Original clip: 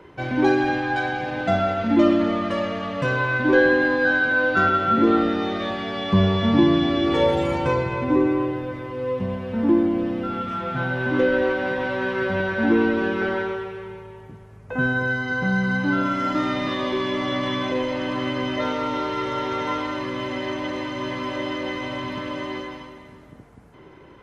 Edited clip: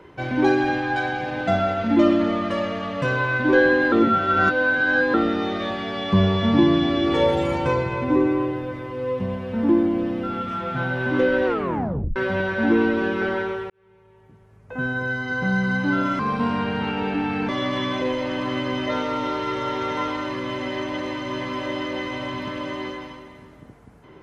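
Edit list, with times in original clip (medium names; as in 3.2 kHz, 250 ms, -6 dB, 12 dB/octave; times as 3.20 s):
3.92–5.14 s: reverse
11.46 s: tape stop 0.70 s
13.70–15.52 s: fade in
16.19–17.19 s: speed 77%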